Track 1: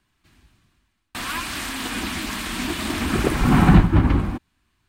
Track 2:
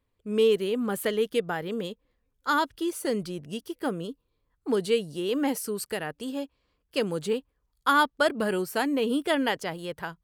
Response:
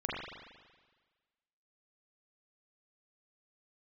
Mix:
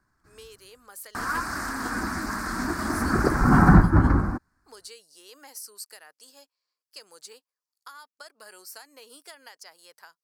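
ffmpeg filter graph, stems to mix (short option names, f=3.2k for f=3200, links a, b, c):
-filter_complex "[0:a]highshelf=f=2.1k:t=q:w=3:g=-11.5,volume=-2dB[a];[1:a]highpass=950,acompressor=threshold=-32dB:ratio=8,volume=-10dB[b];[a][b]amix=inputs=2:normalize=0,highshelf=f=4k:t=q:w=3:g=6.5"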